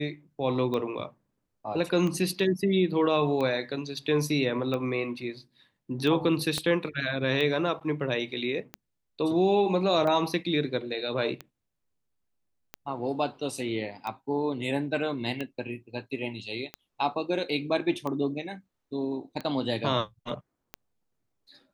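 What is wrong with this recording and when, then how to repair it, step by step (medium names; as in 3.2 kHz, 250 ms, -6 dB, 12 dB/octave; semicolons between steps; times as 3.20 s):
tick 45 rpm -20 dBFS
6.58 s: pop -15 dBFS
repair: de-click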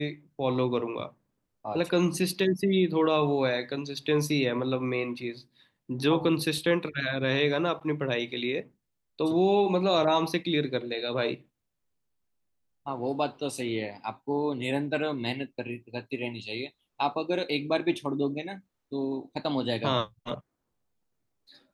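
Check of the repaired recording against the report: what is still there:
6.58 s: pop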